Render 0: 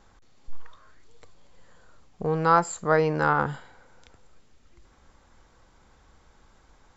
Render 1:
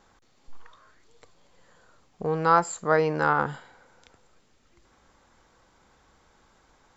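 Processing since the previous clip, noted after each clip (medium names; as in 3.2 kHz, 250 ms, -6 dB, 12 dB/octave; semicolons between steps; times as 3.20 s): bass shelf 99 Hz -10.5 dB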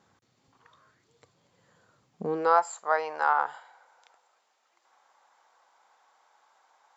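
high-pass sweep 120 Hz -> 790 Hz, 2.10–2.62 s; trim -5.5 dB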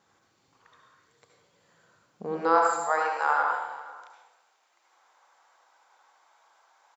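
bass shelf 480 Hz -6.5 dB; delay 491 ms -20 dB; reverberation RT60 0.90 s, pre-delay 65 ms, DRR -0.5 dB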